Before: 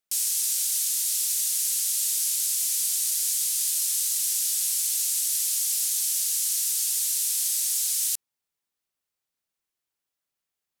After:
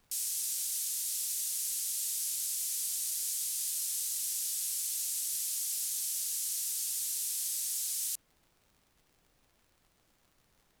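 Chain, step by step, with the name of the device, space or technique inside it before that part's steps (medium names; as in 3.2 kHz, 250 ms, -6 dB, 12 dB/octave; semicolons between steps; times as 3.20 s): vinyl LP (crackle; pink noise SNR 35 dB); trim -9 dB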